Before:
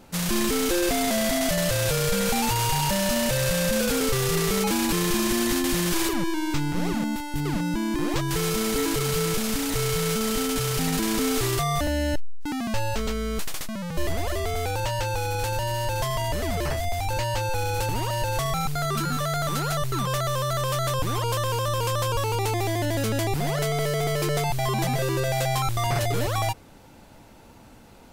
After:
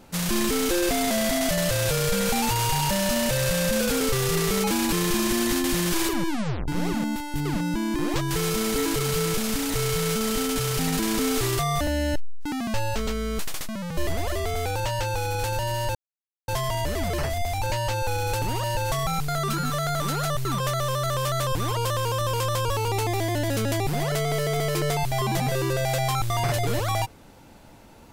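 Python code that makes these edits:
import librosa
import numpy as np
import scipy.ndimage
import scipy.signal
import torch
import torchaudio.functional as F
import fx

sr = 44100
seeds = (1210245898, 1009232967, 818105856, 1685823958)

y = fx.edit(x, sr, fx.tape_stop(start_s=6.28, length_s=0.4),
    fx.insert_silence(at_s=15.95, length_s=0.53), tone=tone)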